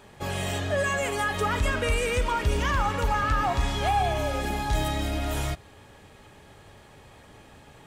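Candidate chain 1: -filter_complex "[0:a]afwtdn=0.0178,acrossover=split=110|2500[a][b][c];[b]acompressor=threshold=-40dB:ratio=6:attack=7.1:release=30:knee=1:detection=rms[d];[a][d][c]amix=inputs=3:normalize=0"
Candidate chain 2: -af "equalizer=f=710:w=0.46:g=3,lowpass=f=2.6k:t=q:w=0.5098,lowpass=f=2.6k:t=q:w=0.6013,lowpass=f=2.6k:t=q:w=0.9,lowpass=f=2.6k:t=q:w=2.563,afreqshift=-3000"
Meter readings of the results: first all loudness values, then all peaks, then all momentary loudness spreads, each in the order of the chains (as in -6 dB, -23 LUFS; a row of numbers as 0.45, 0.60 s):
-32.5, -22.0 LUFS; -15.0, -11.5 dBFS; 5, 6 LU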